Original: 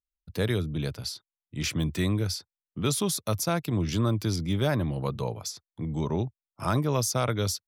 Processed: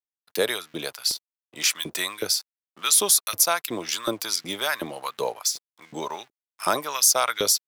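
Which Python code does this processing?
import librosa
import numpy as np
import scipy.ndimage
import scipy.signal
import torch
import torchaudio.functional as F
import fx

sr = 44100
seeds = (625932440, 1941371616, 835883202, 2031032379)

y = np.sign(x) * np.maximum(np.abs(x) - 10.0 ** (-54.5 / 20.0), 0.0)
y = fx.high_shelf(y, sr, hz=5100.0, db=11.0)
y = fx.filter_lfo_highpass(y, sr, shape='saw_up', hz=2.7, low_hz=370.0, high_hz=2000.0, q=1.3)
y = y * librosa.db_to_amplitude(5.0)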